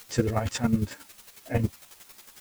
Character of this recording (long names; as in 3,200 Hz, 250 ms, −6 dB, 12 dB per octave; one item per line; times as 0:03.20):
a quantiser's noise floor 8 bits, dither triangular
chopped level 11 Hz, depth 65%, duty 20%
a shimmering, thickened sound